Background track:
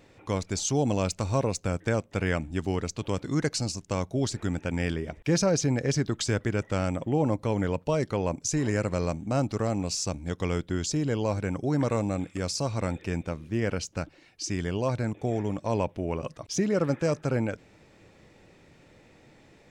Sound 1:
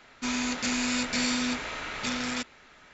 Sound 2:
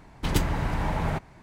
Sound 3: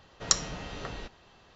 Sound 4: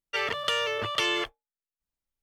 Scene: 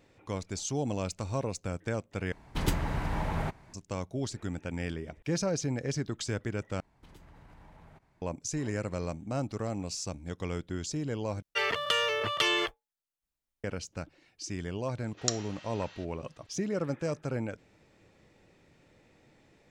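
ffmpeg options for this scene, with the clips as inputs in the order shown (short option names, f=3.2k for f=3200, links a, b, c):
-filter_complex "[2:a]asplit=2[a][b];[0:a]volume=-6.5dB[c];[b]acompressor=threshold=-34dB:ratio=6:attack=3.2:release=140:knee=1:detection=peak[d];[3:a]highpass=1.3k[e];[c]asplit=4[f][g][h][i];[f]atrim=end=2.324[j];[a]atrim=end=1.42,asetpts=PTS-STARTPTS,volume=-4.5dB[k];[g]atrim=start=3.736:end=6.804[l];[d]atrim=end=1.42,asetpts=PTS-STARTPTS,volume=-17dB[m];[h]atrim=start=8.216:end=11.424[n];[4:a]atrim=end=2.22,asetpts=PTS-STARTPTS,volume=-0.5dB[o];[i]atrim=start=13.636[p];[e]atrim=end=1.55,asetpts=PTS-STARTPTS,volume=-6dB,afade=t=in:d=0.004:c=hsin,afade=t=out:st=1.546:d=0.004:c=hsin,adelay=14970[q];[j][k]acrossfade=d=0.004:c1=hsin:c2=hsin[r];[r][l]acrossfade=d=0.004:c1=hsin:c2=hsin[s];[s][m]acrossfade=d=0.004:c1=hsin:c2=hsin[t];[t][n]acrossfade=d=0.004:c1=hsin:c2=hsin[u];[u][o]acrossfade=d=0.004:c1=hsin:c2=hsin[v];[v][p]acrossfade=d=0.004:c1=hsin:c2=hsin[w];[w][q]amix=inputs=2:normalize=0"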